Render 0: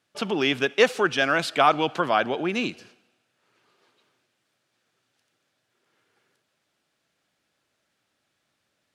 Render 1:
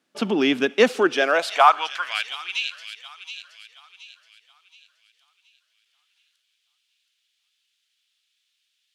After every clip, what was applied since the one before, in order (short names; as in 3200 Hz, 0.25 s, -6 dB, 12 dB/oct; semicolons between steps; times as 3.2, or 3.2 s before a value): high-pass sweep 230 Hz -> 3100 Hz, 0.94–2.3; thin delay 0.723 s, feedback 39%, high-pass 3000 Hz, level -7 dB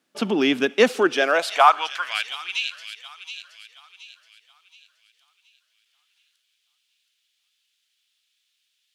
high shelf 10000 Hz +5.5 dB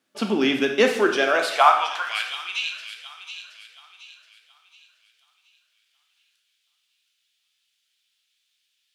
plate-style reverb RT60 0.78 s, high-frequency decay 0.95×, DRR 3 dB; gain -2 dB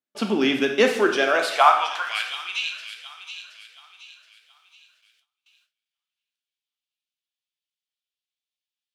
gate with hold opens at -51 dBFS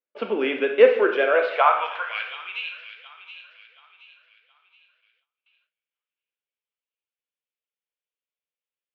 speaker cabinet 460–2500 Hz, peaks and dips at 490 Hz +10 dB, 770 Hz -7 dB, 1200 Hz -4 dB, 1800 Hz -4 dB; gain +1.5 dB